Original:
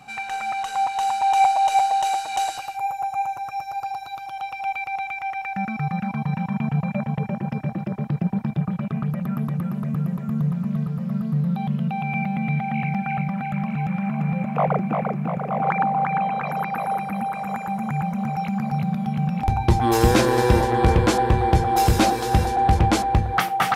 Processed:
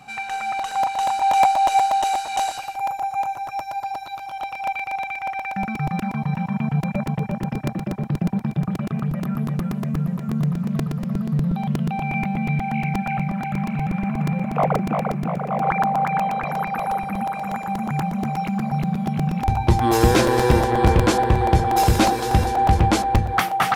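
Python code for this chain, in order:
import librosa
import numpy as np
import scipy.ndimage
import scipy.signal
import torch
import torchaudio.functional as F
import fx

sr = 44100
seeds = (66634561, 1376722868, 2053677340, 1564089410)

y = fx.buffer_crackle(x, sr, first_s=0.59, period_s=0.12, block=128, kind='repeat')
y = y * librosa.db_to_amplitude(1.0)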